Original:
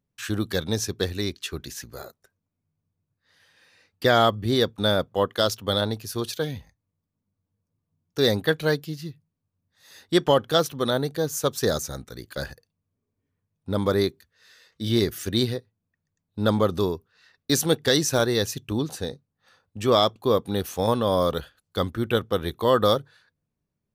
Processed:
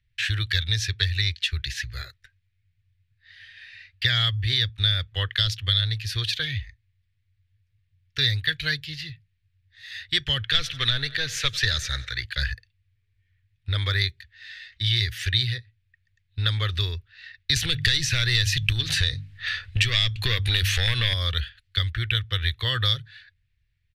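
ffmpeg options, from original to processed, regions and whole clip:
ffmpeg -i in.wav -filter_complex "[0:a]asettb=1/sr,asplit=3[link_01][link_02][link_03];[link_01]atrim=end=10.434[link_04];[link_02]atrim=start=10.43:end=12.24,asetpts=PTS-STARTPTS,afade=type=in:duration=0.004:curve=qsin,afade=type=out:start_time=1.806:duration=0.004:curve=qsin,asplit=2[link_05][link_06];[link_06]highpass=frequency=720:poles=1,volume=14dB,asoftclip=type=tanh:threshold=-7dB[link_07];[link_05][link_07]amix=inputs=2:normalize=0,lowpass=frequency=3000:poles=1,volume=-6dB,aecho=1:1:91|182|273|364:0.0794|0.0413|0.0215|0.0112,atrim=end_sample=79821[link_08];[link_03]atrim=start=12.236[link_09];[link_04][link_08]acrossfade=duration=0.004:curve1=hsin:curve2=qsin[link_10];[link_10][link_09]acrossfade=duration=0.004:curve1=qsin:curve2=hsin,asettb=1/sr,asplit=3[link_11][link_12][link_13];[link_11]atrim=end=17.564[link_14];[link_12]atrim=start=17.56:end=21.14,asetpts=PTS-STARTPTS,afade=type=in:duration=0.004:curve=qsin,afade=type=out:start_time=3.576:duration=0.004:curve=qsin,bandreject=frequency=50:width_type=h:width=6,bandreject=frequency=100:width_type=h:width=6,bandreject=frequency=150:width_type=h:width=6,bandreject=frequency=200:width_type=h:width=6,bandreject=frequency=250:width_type=h:width=6,acompressor=threshold=-40dB:ratio=2.5:attack=3.2:release=140:knee=1:detection=peak,aeval=exprs='0.299*sin(PI/2*7.08*val(0)/0.299)':channel_layout=same[link_15];[link_13]atrim=start=21.136[link_16];[link_14][link_15]acrossfade=duration=0.004:curve1=hsin:curve2=qsin[link_17];[link_17][link_16]acrossfade=duration=0.004:curve1=qsin:curve2=hsin,firequalizer=gain_entry='entry(110,0);entry(180,-25);entry(420,-18);entry(890,-18);entry(1800,15);entry(3800,14);entry(6200,3)':delay=0.05:min_phase=1,acrossover=split=290|4500[link_18][link_19][link_20];[link_18]acompressor=threshold=-38dB:ratio=4[link_21];[link_19]acompressor=threshold=-26dB:ratio=4[link_22];[link_20]acompressor=threshold=-24dB:ratio=4[link_23];[link_21][link_22][link_23]amix=inputs=3:normalize=0,aemphasis=mode=reproduction:type=bsi,volume=2.5dB" out.wav

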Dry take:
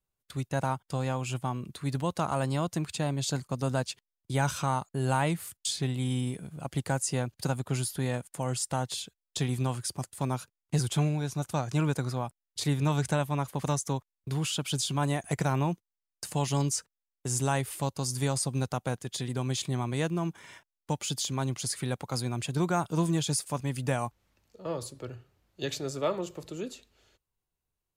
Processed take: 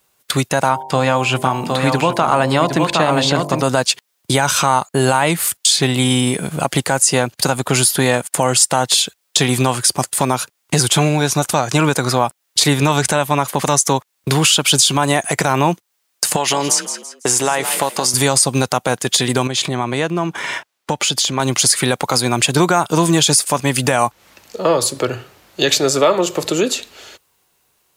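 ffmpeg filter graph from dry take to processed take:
ffmpeg -i in.wav -filter_complex "[0:a]asettb=1/sr,asplit=3[link_01][link_02][link_03];[link_01]atrim=end=0.694[link_04];[link_02]atrim=start=0.69:end=3.63,asetpts=PTS-STARTPTS,afade=type=in:duration=0.004:curve=qsin,afade=type=out:start_time=2.936:duration=0.004:curve=qsin,bandreject=frequency=48.98:width_type=h:width=4,bandreject=frequency=97.96:width_type=h:width=4,bandreject=frequency=146.94:width_type=h:width=4,bandreject=frequency=195.92:width_type=h:width=4,bandreject=frequency=244.9:width_type=h:width=4,bandreject=frequency=293.88:width_type=h:width=4,bandreject=frequency=342.86:width_type=h:width=4,bandreject=frequency=391.84:width_type=h:width=4,bandreject=frequency=440.82:width_type=h:width=4,bandreject=frequency=489.8:width_type=h:width=4,bandreject=frequency=538.78:width_type=h:width=4,bandreject=frequency=587.76:width_type=h:width=4,bandreject=frequency=636.74:width_type=h:width=4,bandreject=frequency=685.72:width_type=h:width=4,bandreject=frequency=734.7:width_type=h:width=4,bandreject=frequency=783.68:width_type=h:width=4,bandreject=frequency=832.66:width_type=h:width=4,bandreject=frequency=881.64:width_type=h:width=4,bandreject=frequency=930.62:width_type=h:width=4,bandreject=frequency=979.6:width_type=h:width=4,bandreject=frequency=1028.58:width_type=h:width=4,acrossover=split=3900[link_05][link_06];[link_06]acompressor=threshold=-55dB:ratio=4:attack=1:release=60[link_07];[link_05][link_07]amix=inputs=2:normalize=0,aecho=1:1:763:0.473,atrim=end_sample=129654[link_08];[link_03]atrim=start=3.626[link_09];[link_04][link_08]acrossfade=duration=0.004:curve1=hsin:curve2=qsin[link_10];[link_10][link_09]acrossfade=duration=0.004:curve1=qsin:curve2=hsin,asettb=1/sr,asplit=3[link_11][link_12][link_13];[link_11]atrim=end=16.364[link_14];[link_12]atrim=start=16.36:end=18.14,asetpts=PTS-STARTPTS,afade=type=in:duration=0.004:curve=qsin,afade=type=out:start_time=1.776:duration=0.004:curve=qsin,bass=frequency=250:gain=-12,treble=frequency=4000:gain=-7,acompressor=threshold=-33dB:ratio=6:attack=3.2:release=140:knee=1:detection=peak,asplit=4[link_15][link_16][link_17][link_18];[link_16]adelay=166,afreqshift=38,volume=-13dB[link_19];[link_17]adelay=332,afreqshift=76,volume=-22.9dB[link_20];[link_18]adelay=498,afreqshift=114,volume=-32.8dB[link_21];[link_15][link_19][link_20][link_21]amix=inputs=4:normalize=0,atrim=end_sample=78498[link_22];[link_13]atrim=start=18.136[link_23];[link_14][link_22]acrossfade=duration=0.004:curve1=hsin:curve2=qsin[link_24];[link_24][link_23]acrossfade=duration=0.004:curve1=qsin:curve2=hsin,asettb=1/sr,asplit=3[link_25][link_26][link_27];[link_25]atrim=end=19.474[link_28];[link_26]atrim=start=19.47:end=21.4,asetpts=PTS-STARTPTS,afade=type=in:duration=0.004:curve=qsin,afade=type=out:start_time=1.926:duration=0.004:curve=qsin,highshelf=frequency=5800:gain=-11,acompressor=threshold=-40dB:ratio=2.5:attack=3.2:release=140:knee=1:detection=peak[link_29];[link_27]atrim=start=21.396[link_30];[link_28][link_29]acrossfade=duration=0.004:curve1=hsin:curve2=qsin[link_31];[link_31][link_30]acrossfade=duration=0.004:curve1=qsin:curve2=hsin,highpass=frequency=510:poles=1,acompressor=threshold=-44dB:ratio=2,alimiter=level_in=29.5dB:limit=-1dB:release=50:level=0:latency=1,volume=-1dB" out.wav

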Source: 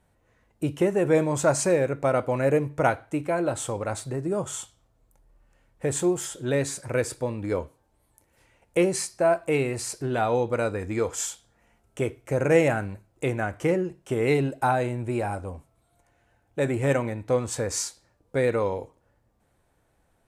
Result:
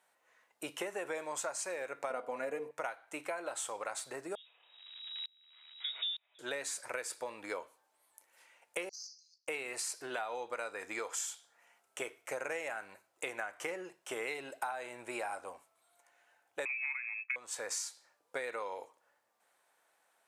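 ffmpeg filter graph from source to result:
ffmpeg -i in.wav -filter_complex "[0:a]asettb=1/sr,asplit=3[link_01][link_02][link_03];[link_01]atrim=end=2.104[link_04];[link_02]atrim=start=2.1:end=2.71,asetpts=PTS-STARTPTS,afade=type=in:duration=0.004:curve=qsin,afade=type=out:start_time=0.606:duration=0.004:curve=qsin,equalizer=frequency=190:width=0.34:gain=11,aecho=1:1:4.2:0.5,atrim=end_sample=26901,bandreject=frequency=56.89:width_type=h:width=4,bandreject=frequency=113.78:width_type=h:width=4,bandreject=frequency=170.67:width_type=h:width=4,bandreject=frequency=227.56:width_type=h:width=4,bandreject=frequency=284.45:width_type=h:width=4,bandreject=frequency=341.34:width_type=h:width=4,bandreject=frequency=398.23:width_type=h:width=4,bandreject=frequency=455.12:width_type=h:width=4,bandreject=frequency=512.01:width_type=h:width=4,bandreject=frequency=568.9:width_type=h:width=4,bandreject=frequency=625.79:width_type=h:width=4,bandreject=frequency=682.68:width_type=h:width=4,bandreject=frequency=739.57:width_type=h:width=4,bandreject=frequency=796.46:width_type=h:width=4,bandreject=frequency=853.35:width_type=h:width=4,bandreject=frequency=910.24:width_type=h:width=4,bandreject=frequency=967.13:width_type=h:width=4,bandreject=frequency=1024.02:width_type=h:width=4,bandreject=frequency=1080.91:width_type=h:width=4,bandreject=frequency=1137.8:width_type=h:width=4[link_05];[link_03]atrim=start=2.706[link_06];[link_04][link_05]acrossfade=duration=0.004:curve1=hsin:curve2=qsin[link_07];[link_07][link_06]acrossfade=duration=0.004:curve1=qsin:curve2=hsin,asettb=1/sr,asplit=3[link_08][link_09][link_10];[link_08]atrim=end=4.354[link_11];[link_09]atrim=start=4.35:end=6.39,asetpts=PTS-STARTPTS,afade=type=in:duration=0.004:curve=qsin,afade=type=out:start_time=2.036:duration=0.004:curve=qsin,aeval=exprs='val(0)+0.5*0.0178*sgn(val(0))':channel_layout=same,lowpass=frequency=3300:width_type=q:width=0.5098,lowpass=frequency=3300:width_type=q:width=0.6013,lowpass=frequency=3300:width_type=q:width=0.9,lowpass=frequency=3300:width_type=q:width=2.563,afreqshift=-3900,aeval=exprs='val(0)*pow(10,-32*if(lt(mod(-1.1*n/s,1),2*abs(-1.1)/1000),1-mod(-1.1*n/s,1)/(2*abs(-1.1)/1000),(mod(-1.1*n/s,1)-2*abs(-1.1)/1000)/(1-2*abs(-1.1)/1000))/20)':channel_layout=same[link_12];[link_10]atrim=start=6.386[link_13];[link_11][link_12]acrossfade=duration=0.004:curve1=hsin:curve2=qsin[link_14];[link_14][link_13]acrossfade=duration=0.004:curve1=qsin:curve2=hsin,asettb=1/sr,asplit=3[link_15][link_16][link_17];[link_15]atrim=end=8.894[link_18];[link_16]atrim=start=8.89:end=9.48,asetpts=PTS-STARTPTS,afade=type=in:duration=0.004:curve=qsin,afade=type=out:start_time=0.586:duration=0.004:curve=qsin,asuperpass=centerf=5400:order=8:qfactor=2.9,acompressor=threshold=-41dB:ratio=12:attack=3.2:release=140:knee=1:detection=peak,aeval=exprs='(tanh(25.1*val(0)+0.25)-tanh(0.25))/25.1':channel_layout=same[link_19];[link_17]atrim=start=9.476[link_20];[link_18][link_19]acrossfade=duration=0.004:curve1=hsin:curve2=qsin[link_21];[link_21][link_20]acrossfade=duration=0.004:curve1=qsin:curve2=hsin,asettb=1/sr,asplit=3[link_22][link_23][link_24];[link_22]atrim=end=16.654[link_25];[link_23]atrim=start=16.65:end=17.36,asetpts=PTS-STARTPTS,afade=type=in:duration=0.004:curve=qsin,afade=type=out:start_time=0.706:duration=0.004:curve=qsin,agate=range=-33dB:threshold=-36dB:ratio=3:release=100:detection=peak,lowpass=frequency=2300:width_type=q:width=0.5098,lowpass=frequency=2300:width_type=q:width=0.6013,lowpass=frequency=2300:width_type=q:width=0.9,lowpass=frequency=2300:width_type=q:width=2.563,afreqshift=-2700,highpass=1200[link_26];[link_24]atrim=start=17.356[link_27];[link_25][link_26]acrossfade=duration=0.004:curve1=hsin:curve2=qsin[link_28];[link_28][link_27]acrossfade=duration=0.004:curve1=qsin:curve2=hsin,highpass=850,acompressor=threshold=-36dB:ratio=12,volume=1dB" out.wav

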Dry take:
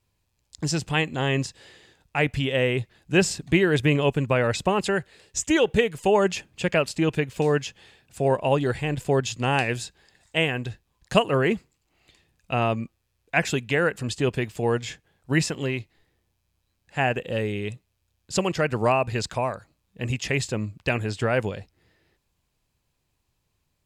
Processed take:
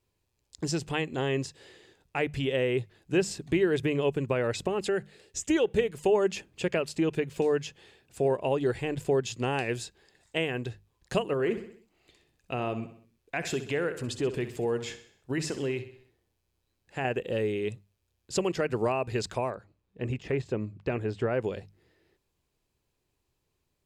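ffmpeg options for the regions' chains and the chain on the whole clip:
ffmpeg -i in.wav -filter_complex "[0:a]asettb=1/sr,asplit=3[link_01][link_02][link_03];[link_01]atrim=end=4.674[link_04];[link_02]atrim=start=4.67:end=5.5,asetpts=PTS-STARTPTS,afade=type=in:duration=0.004:curve=qsin,afade=type=out:start_time=0.826:duration=0.004:curve=qsin,bandreject=frequency=1000:width=8.2,acompressor=threshold=-29dB:ratio=1.5:attack=3.2:release=140:knee=1:detection=peak[link_05];[link_03]atrim=start=5.496[link_06];[link_04][link_05]acrossfade=duration=0.004:curve1=hsin:curve2=qsin[link_07];[link_07][link_06]acrossfade=duration=0.004:curve1=qsin:curve2=hsin,asettb=1/sr,asplit=3[link_08][link_09][link_10];[link_08]atrim=end=11.334[link_11];[link_09]atrim=start=11.33:end=17.05,asetpts=PTS-STARTPTS,afade=type=in:duration=0.004:curve=qsin,afade=type=out:start_time=5.716:duration=0.004:curve=qsin,acompressor=threshold=-26dB:ratio=2:attack=3.2:release=140:knee=1:detection=peak,aecho=1:1:64|128|192|256|320:0.237|0.119|0.0593|0.0296|0.0148,atrim=end_sample=252252[link_12];[link_10]atrim=start=17.046[link_13];[link_11][link_12]acrossfade=duration=0.004:curve1=hsin:curve2=qsin[link_14];[link_14][link_13]acrossfade=duration=0.004:curve1=qsin:curve2=hsin,asettb=1/sr,asplit=3[link_15][link_16][link_17];[link_15]atrim=end=19.504[link_18];[link_16]atrim=start=19.5:end=21.44,asetpts=PTS-STARTPTS,afade=type=in:duration=0.004:curve=qsin,afade=type=out:start_time=1.936:duration=0.004:curve=qsin,deesser=0.9,lowpass=frequency=2100:poles=1[link_19];[link_17]atrim=start=21.436[link_20];[link_18][link_19]acrossfade=duration=0.004:curve1=hsin:curve2=qsin[link_21];[link_21][link_20]acrossfade=duration=0.004:curve1=qsin:curve2=hsin,acompressor=threshold=-23dB:ratio=2.5,equalizer=frequency=390:width_type=o:width=0.76:gain=7.5,bandreject=frequency=50:width_type=h:width=6,bandreject=frequency=100:width_type=h:width=6,bandreject=frequency=150:width_type=h:width=6,bandreject=frequency=200:width_type=h:width=6,volume=-4.5dB" out.wav

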